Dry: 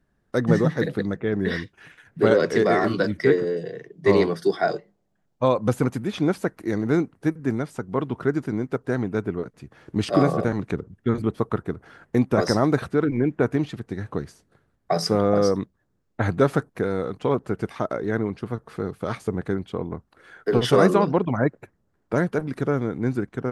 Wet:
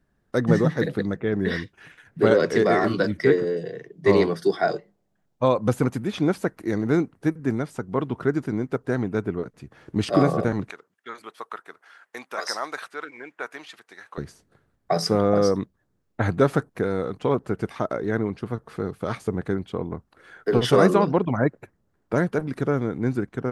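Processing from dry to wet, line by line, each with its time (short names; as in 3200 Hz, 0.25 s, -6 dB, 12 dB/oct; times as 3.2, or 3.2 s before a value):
10.7–14.18 HPF 1100 Hz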